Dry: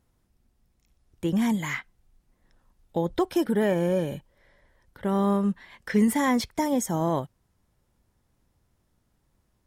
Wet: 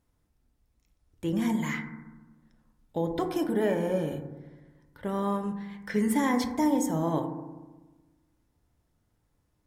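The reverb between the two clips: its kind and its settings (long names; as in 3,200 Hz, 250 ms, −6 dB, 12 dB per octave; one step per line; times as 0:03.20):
feedback delay network reverb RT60 1.2 s, low-frequency decay 1.3×, high-frequency decay 0.25×, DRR 4.5 dB
level −4.5 dB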